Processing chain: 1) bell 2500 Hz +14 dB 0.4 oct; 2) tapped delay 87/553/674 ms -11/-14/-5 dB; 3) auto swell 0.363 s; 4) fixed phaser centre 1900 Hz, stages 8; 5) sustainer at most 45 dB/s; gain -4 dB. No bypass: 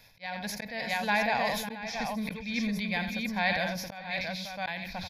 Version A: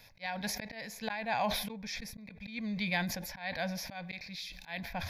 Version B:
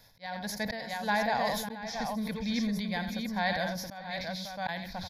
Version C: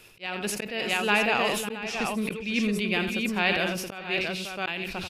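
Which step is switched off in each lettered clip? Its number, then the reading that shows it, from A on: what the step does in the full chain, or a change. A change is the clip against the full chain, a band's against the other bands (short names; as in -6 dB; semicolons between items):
2, momentary loudness spread change +2 LU; 1, 2 kHz band -3.5 dB; 4, 1 kHz band -3.5 dB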